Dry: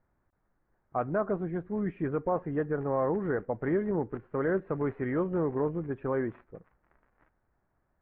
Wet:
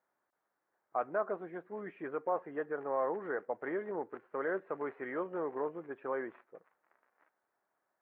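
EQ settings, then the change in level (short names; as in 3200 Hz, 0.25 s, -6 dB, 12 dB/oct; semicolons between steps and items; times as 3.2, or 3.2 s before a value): HPF 500 Hz 12 dB/oct; -2.0 dB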